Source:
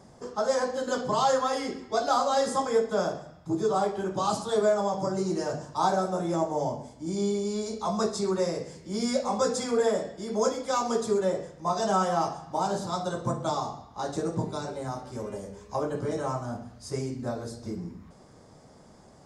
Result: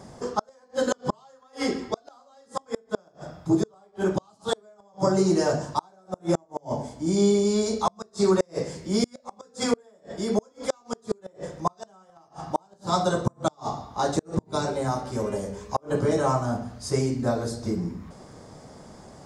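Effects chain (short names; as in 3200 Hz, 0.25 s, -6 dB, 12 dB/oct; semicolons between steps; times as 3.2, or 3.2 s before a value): flipped gate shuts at -18 dBFS, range -37 dB; gain +7.5 dB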